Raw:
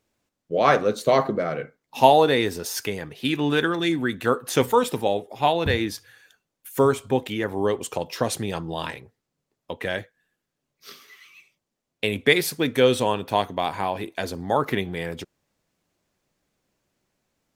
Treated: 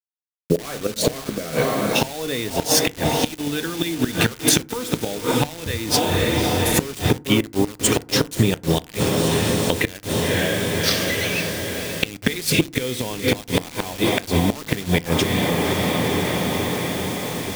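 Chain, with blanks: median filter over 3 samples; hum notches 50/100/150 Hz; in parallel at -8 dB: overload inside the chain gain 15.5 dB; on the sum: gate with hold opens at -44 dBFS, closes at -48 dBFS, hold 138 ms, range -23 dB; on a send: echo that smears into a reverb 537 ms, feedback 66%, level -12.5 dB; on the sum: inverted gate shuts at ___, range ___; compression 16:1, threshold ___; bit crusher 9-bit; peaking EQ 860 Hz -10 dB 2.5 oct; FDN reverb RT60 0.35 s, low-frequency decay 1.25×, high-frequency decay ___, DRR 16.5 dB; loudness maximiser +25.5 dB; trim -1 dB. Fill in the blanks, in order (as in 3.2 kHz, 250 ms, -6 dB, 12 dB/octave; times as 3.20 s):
-12 dBFS, -27 dB, -35 dBFS, 0.5×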